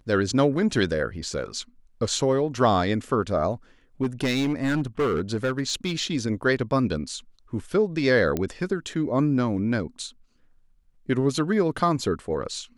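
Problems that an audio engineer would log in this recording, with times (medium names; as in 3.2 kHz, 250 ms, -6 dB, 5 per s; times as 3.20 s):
4.02–6.10 s: clipped -19.5 dBFS
8.37 s: pop -13 dBFS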